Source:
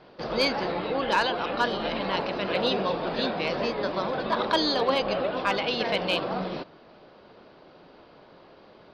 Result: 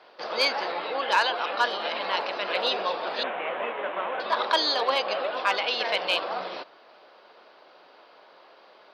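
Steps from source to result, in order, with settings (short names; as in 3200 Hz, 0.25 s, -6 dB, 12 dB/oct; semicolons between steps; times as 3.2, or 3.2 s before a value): 3.23–4.2 CVSD 16 kbps; HPF 640 Hz 12 dB/oct; gain +2.5 dB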